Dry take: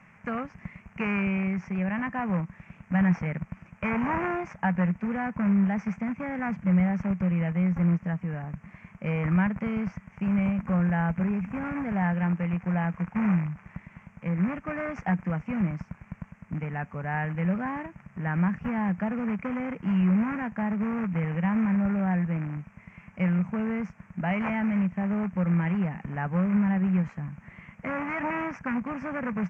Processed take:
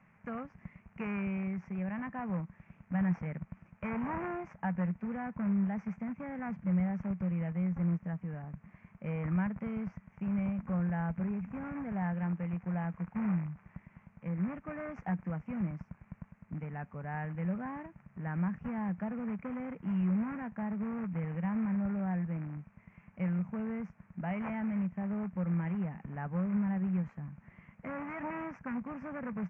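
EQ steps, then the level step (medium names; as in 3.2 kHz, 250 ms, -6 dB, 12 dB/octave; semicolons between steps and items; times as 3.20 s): treble shelf 2.1 kHz -9.5 dB; -7.5 dB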